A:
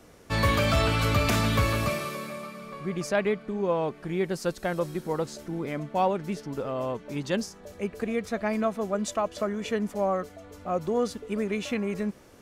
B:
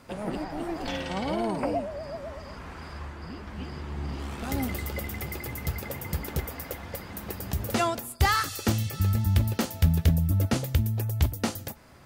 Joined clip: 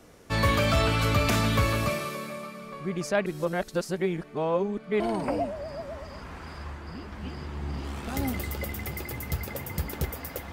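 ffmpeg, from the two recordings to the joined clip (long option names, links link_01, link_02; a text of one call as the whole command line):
ffmpeg -i cue0.wav -i cue1.wav -filter_complex "[0:a]apad=whole_dur=10.52,atrim=end=10.52,asplit=2[link_01][link_02];[link_01]atrim=end=3.262[link_03];[link_02]atrim=start=3.258:end=5.002,asetpts=PTS-STARTPTS,areverse[link_04];[1:a]atrim=start=1.348:end=6.87[link_05];[link_03][link_04]acrossfade=duration=0.004:curve1=hsin:curve2=hsin[link_06];[link_06][link_05]acrossfade=duration=0.004:curve1=hsin:curve2=hsin" out.wav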